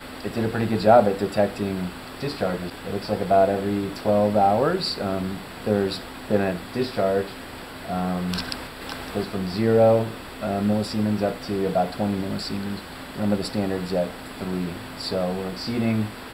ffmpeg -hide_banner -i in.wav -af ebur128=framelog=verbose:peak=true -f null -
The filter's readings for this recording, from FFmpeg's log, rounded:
Integrated loudness:
  I:         -24.3 LUFS
  Threshold: -34.4 LUFS
Loudness range:
  LRA:         5.0 LU
  Threshold: -44.5 LUFS
  LRA low:   -27.6 LUFS
  LRA high:  -22.6 LUFS
True peak:
  Peak:       -2.8 dBFS